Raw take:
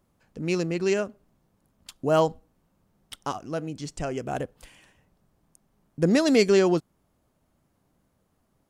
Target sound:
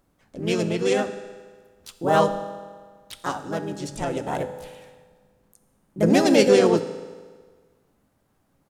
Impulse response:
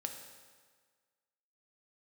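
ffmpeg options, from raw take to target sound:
-filter_complex "[0:a]asplit=4[s0][s1][s2][s3];[s1]asetrate=29433,aresample=44100,atempo=1.49831,volume=0.141[s4];[s2]asetrate=35002,aresample=44100,atempo=1.25992,volume=0.158[s5];[s3]asetrate=55563,aresample=44100,atempo=0.793701,volume=0.794[s6];[s0][s4][s5][s6]amix=inputs=4:normalize=0,bandreject=f=48.56:t=h:w=4,bandreject=f=97.12:t=h:w=4,bandreject=f=145.68:t=h:w=4,bandreject=f=194.24:t=h:w=4,bandreject=f=242.8:t=h:w=4,asplit=2[s7][s8];[1:a]atrim=start_sample=2205[s9];[s8][s9]afir=irnorm=-1:irlink=0,volume=1.58[s10];[s7][s10]amix=inputs=2:normalize=0,volume=0.473"

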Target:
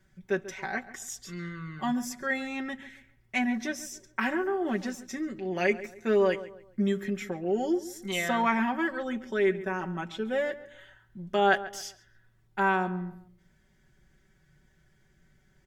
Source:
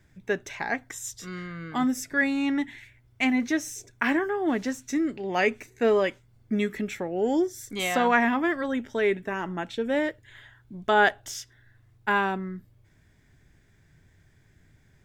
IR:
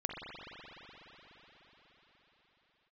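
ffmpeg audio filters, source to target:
-filter_complex "[0:a]asetrate=42336,aresample=44100,aecho=1:1:5.3:0.82,asplit=2[s0][s1];[s1]adelay=138,lowpass=f=2300:p=1,volume=0.178,asplit=2[s2][s3];[s3]adelay=138,lowpass=f=2300:p=1,volume=0.35,asplit=2[s4][s5];[s5]adelay=138,lowpass=f=2300:p=1,volume=0.35[s6];[s0][s2][s4][s6]amix=inputs=4:normalize=0,volume=0.531"

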